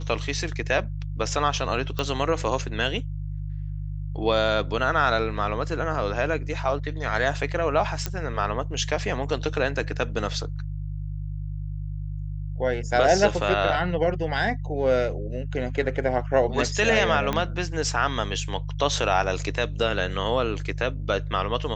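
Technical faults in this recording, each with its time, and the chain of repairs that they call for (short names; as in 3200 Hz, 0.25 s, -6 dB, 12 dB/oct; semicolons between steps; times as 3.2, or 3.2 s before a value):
hum 50 Hz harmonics 3 -31 dBFS
1.99 pop -14 dBFS
8.06 pop -11 dBFS
17.33 pop -11 dBFS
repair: de-click; de-hum 50 Hz, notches 3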